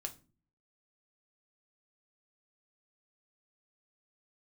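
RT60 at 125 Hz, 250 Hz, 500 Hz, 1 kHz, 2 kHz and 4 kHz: 0.75, 0.65, 0.40, 0.30, 0.30, 0.25 seconds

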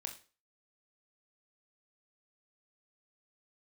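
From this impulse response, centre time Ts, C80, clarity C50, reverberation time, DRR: 14 ms, 16.0 dB, 11.0 dB, 0.35 s, 3.0 dB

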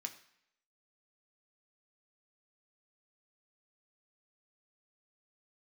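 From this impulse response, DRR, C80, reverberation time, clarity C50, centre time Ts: 4.0 dB, 15.0 dB, 0.70 s, 13.0 dB, 10 ms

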